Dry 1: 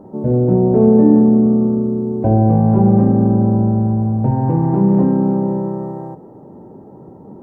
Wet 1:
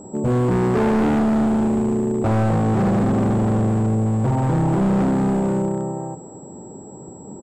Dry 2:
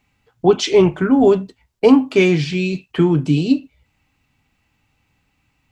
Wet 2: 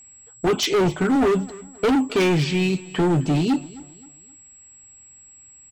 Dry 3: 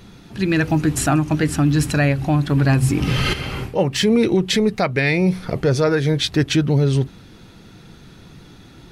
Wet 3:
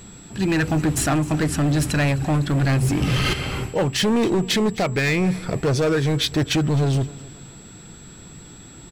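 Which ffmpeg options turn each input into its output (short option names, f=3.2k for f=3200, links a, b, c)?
-filter_complex "[0:a]aeval=exprs='val(0)+0.00562*sin(2*PI*7700*n/s)':c=same,asoftclip=type=hard:threshold=-16dB,asplit=2[a][b];[b]aecho=0:1:262|524|786:0.1|0.037|0.0137[c];[a][c]amix=inputs=2:normalize=0"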